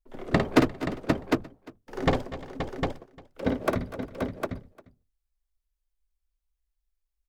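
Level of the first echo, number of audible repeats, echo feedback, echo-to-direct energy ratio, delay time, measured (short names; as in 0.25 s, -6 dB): -6.5 dB, 8, no steady repeat, -1.5 dB, 53 ms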